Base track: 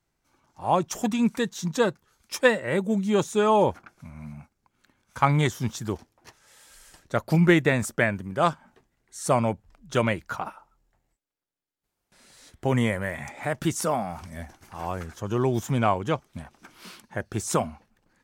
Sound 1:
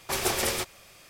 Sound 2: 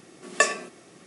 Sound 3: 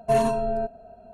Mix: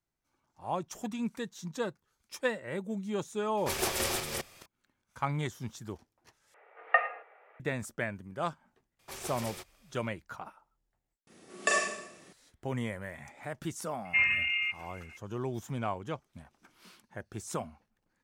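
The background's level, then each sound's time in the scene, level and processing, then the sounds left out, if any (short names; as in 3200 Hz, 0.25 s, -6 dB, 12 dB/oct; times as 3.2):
base track -11.5 dB
3.57 add 1 -5 dB + reverse delay 0.211 s, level -3.5 dB
6.54 replace with 2 -2.5 dB + mistuned SSB +87 Hz 490–2200 Hz
8.99 add 1 -15 dB
11.27 add 2 -9 dB + Schroeder reverb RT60 0.77 s, combs from 30 ms, DRR -2 dB
14.05 add 3 -6 dB + inverted band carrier 2800 Hz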